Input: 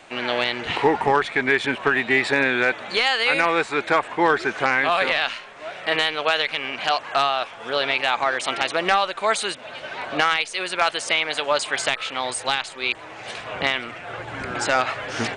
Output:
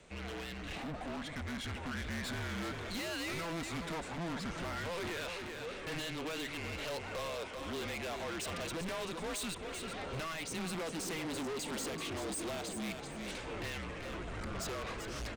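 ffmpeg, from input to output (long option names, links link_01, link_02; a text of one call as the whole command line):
ffmpeg -i in.wav -filter_complex "[0:a]afreqshift=-170,asettb=1/sr,asplit=3[link_01][link_02][link_03];[link_01]atrim=end=10.474[link_04];[link_02]atrim=start=10.47:end=12.91,asetpts=PTS-STARTPTS,afade=type=in:duration=0.004:curve=qsin,afade=type=out:start_time=2.436:duration=0.004:curve=qsin,equalizer=frequency=280:width=0.55:gain=11.5[link_05];[link_03]atrim=start=12.906[link_06];[link_04][link_05]acrossfade=duration=0.004:curve1=hsin:curve2=qsin[link_07];[link_07][link_06]acrossfade=duration=0.004:curve1=qsin:curve2=hsin,acompressor=threshold=-16dB:ratio=6,equalizer=frequency=1400:width=0.31:gain=-10,asoftclip=type=hard:threshold=-31.5dB,aecho=1:1:387|774|1161:0.355|0.0745|0.0156,dynaudnorm=framelen=210:gausssize=17:maxgain=6dB,asoftclip=type=tanh:threshold=-30.5dB,volume=-6dB" out.wav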